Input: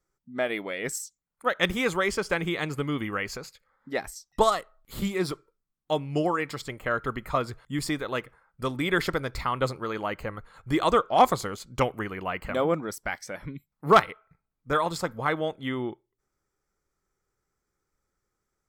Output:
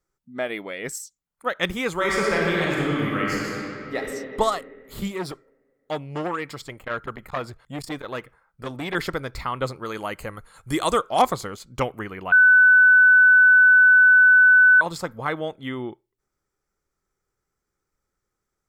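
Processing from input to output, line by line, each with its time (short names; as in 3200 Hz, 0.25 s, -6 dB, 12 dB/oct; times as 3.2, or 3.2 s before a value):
1.93–3.96 reverb throw, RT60 2.7 s, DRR -4.5 dB
5.11–8.95 core saturation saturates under 1200 Hz
9.85–11.22 bell 10000 Hz +15 dB 1.4 oct
12.32–14.81 bleep 1500 Hz -10 dBFS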